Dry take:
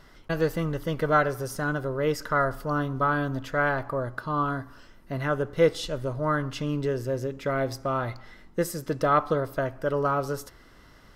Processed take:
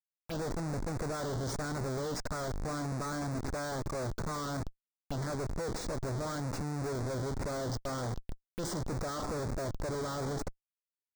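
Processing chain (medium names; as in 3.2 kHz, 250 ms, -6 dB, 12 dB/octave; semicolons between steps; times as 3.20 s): Schmitt trigger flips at -38 dBFS; touch-sensitive phaser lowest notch 320 Hz, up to 3.1 kHz, full sweep at -26 dBFS; upward expansion 1.5:1, over -38 dBFS; trim -5.5 dB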